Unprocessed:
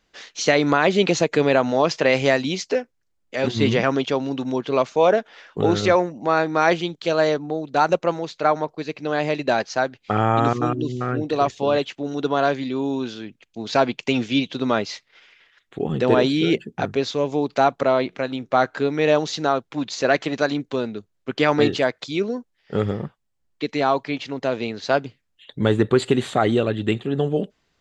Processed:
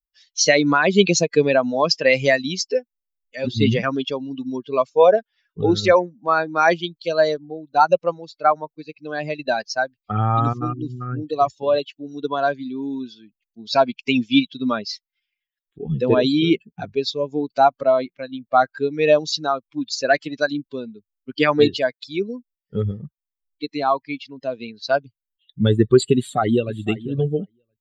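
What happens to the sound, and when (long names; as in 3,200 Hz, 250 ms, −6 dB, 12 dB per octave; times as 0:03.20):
0:26.17–0:26.74: delay throw 510 ms, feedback 20%, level −9.5 dB
whole clip: spectral dynamics exaggerated over time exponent 2; parametric band 5,300 Hz +7.5 dB 0.51 octaves; level +6.5 dB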